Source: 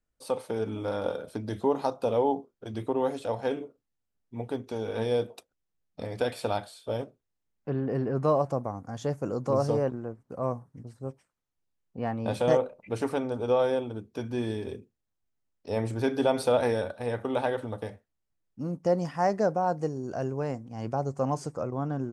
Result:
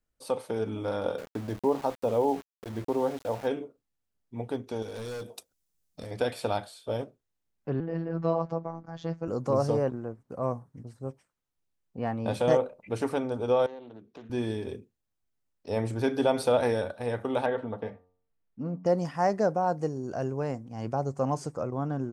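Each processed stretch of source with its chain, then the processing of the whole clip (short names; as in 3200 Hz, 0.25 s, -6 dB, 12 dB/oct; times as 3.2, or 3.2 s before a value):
1.18–3.47 high shelf 2500 Hz -10 dB + sample gate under -41 dBFS
4.82–6.11 hard clip -28 dBFS + tone controls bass +2 dB, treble +12 dB + compressor 3:1, threshold -37 dBFS
7.8–9.28 LPF 5000 Hz 24 dB/oct + robotiser 165 Hz
13.66–14.3 three-band isolator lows -13 dB, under 160 Hz, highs -21 dB, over 5500 Hz + compressor 2.5:1, threshold -47 dBFS + Doppler distortion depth 0.23 ms
17.46–18.86 LPF 2600 Hz + comb 4.4 ms, depth 34% + de-hum 90.83 Hz, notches 14
whole clip: dry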